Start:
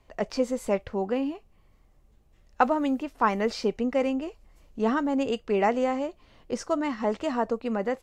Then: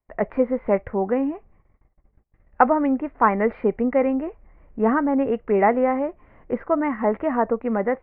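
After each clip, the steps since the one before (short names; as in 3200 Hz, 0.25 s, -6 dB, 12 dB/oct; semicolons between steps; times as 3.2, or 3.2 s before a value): elliptic low-pass 2100 Hz, stop band 70 dB; gate -58 dBFS, range -28 dB; gain +6 dB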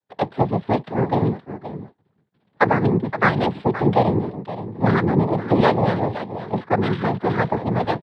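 octaver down 1 oct, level +3 dB; echo 0.521 s -12 dB; noise vocoder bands 6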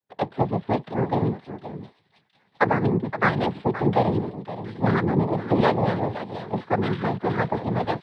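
thin delay 0.713 s, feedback 53%, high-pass 3200 Hz, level -10.5 dB; gain -3.5 dB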